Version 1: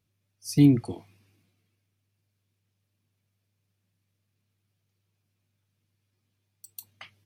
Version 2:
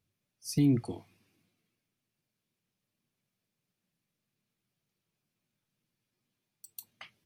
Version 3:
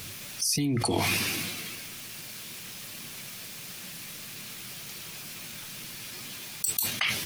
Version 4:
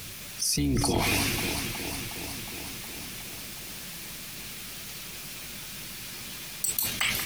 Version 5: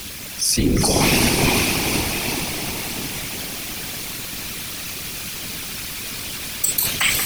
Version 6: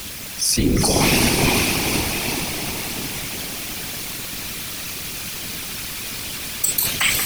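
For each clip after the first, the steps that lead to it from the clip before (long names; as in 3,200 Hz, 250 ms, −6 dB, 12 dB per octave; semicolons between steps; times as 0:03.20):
mains-hum notches 50/100 Hz; brickwall limiter −14.5 dBFS, peak gain reduction 6.5 dB; level −3 dB
tilt shelving filter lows −6 dB; envelope flattener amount 100%; level +1 dB
sub-octave generator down 2 octaves, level −5 dB; on a send: delay that swaps between a low-pass and a high-pass 182 ms, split 2,000 Hz, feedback 84%, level −6.5 dB
feedback delay with all-pass diffusion 475 ms, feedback 46%, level −3.5 dB; random phases in short frames; level +8 dB
bit-depth reduction 6 bits, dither none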